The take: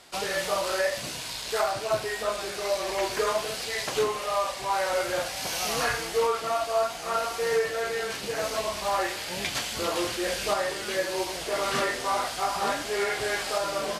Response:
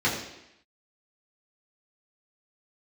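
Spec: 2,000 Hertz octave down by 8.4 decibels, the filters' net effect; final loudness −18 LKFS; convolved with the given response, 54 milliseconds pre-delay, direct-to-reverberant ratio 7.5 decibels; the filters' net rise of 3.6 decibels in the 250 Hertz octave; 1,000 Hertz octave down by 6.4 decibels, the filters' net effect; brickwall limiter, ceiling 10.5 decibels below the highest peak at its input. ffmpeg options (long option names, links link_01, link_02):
-filter_complex "[0:a]equalizer=frequency=250:width_type=o:gain=6.5,equalizer=frequency=1000:width_type=o:gain=-7,equalizer=frequency=2000:width_type=o:gain=-8.5,alimiter=level_in=1.5dB:limit=-24dB:level=0:latency=1,volume=-1.5dB,asplit=2[link_01][link_02];[1:a]atrim=start_sample=2205,adelay=54[link_03];[link_02][link_03]afir=irnorm=-1:irlink=0,volume=-21.5dB[link_04];[link_01][link_04]amix=inputs=2:normalize=0,volume=15.5dB"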